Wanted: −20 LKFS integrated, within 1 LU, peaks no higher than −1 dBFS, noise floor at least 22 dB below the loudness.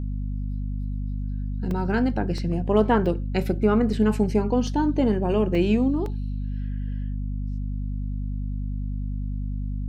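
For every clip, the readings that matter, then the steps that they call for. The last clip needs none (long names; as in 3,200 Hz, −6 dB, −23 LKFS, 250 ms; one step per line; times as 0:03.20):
number of dropouts 7; longest dropout 1.9 ms; mains hum 50 Hz; hum harmonics up to 250 Hz; level of the hum −26 dBFS; integrated loudness −25.5 LKFS; sample peak −6.0 dBFS; target loudness −20.0 LKFS
→ repair the gap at 0:01.71/0:02.38/0:03.06/0:03.93/0:04.67/0:05.55/0:06.06, 1.9 ms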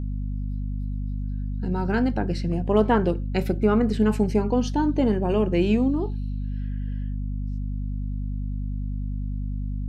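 number of dropouts 0; mains hum 50 Hz; hum harmonics up to 250 Hz; level of the hum −26 dBFS
→ hum removal 50 Hz, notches 5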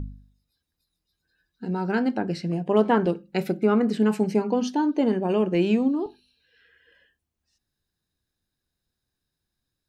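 mains hum none found; integrated loudness −24.0 LKFS; sample peak −7.5 dBFS; target loudness −20.0 LKFS
→ level +4 dB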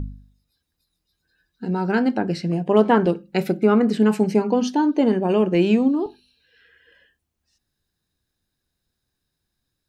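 integrated loudness −20.0 LKFS; sample peak −3.5 dBFS; background noise floor −79 dBFS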